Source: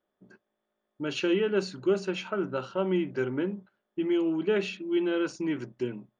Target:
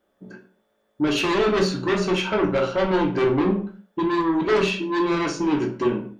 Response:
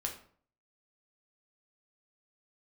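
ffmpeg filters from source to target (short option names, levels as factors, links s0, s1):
-filter_complex "[0:a]equalizer=f=260:w=0.48:g=3,asplit=2[s0][s1];[s1]aeval=exprs='0.251*sin(PI/2*5.01*val(0)/0.251)':c=same,volume=0.355[s2];[s0][s2]amix=inputs=2:normalize=0[s3];[1:a]atrim=start_sample=2205,afade=t=out:st=0.38:d=0.01,atrim=end_sample=17199,asetrate=48510,aresample=44100[s4];[s3][s4]afir=irnorm=-1:irlink=0"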